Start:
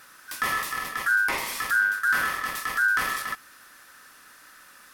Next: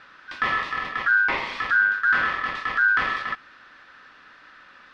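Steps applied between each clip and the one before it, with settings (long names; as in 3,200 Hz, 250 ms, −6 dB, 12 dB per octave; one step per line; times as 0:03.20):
low-pass filter 3,800 Hz 24 dB per octave
level +3 dB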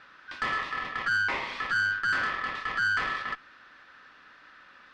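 tube saturation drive 18 dB, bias 0.25
level −3.5 dB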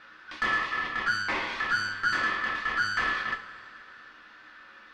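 coupled-rooms reverb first 0.25 s, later 2.6 s, from −18 dB, DRR 2 dB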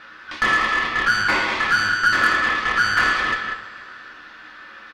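loudspeakers that aren't time-aligned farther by 55 metres −10 dB, 66 metres −7 dB
harmonic generator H 6 −28 dB, 8 −25 dB, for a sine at −13.5 dBFS
level +8.5 dB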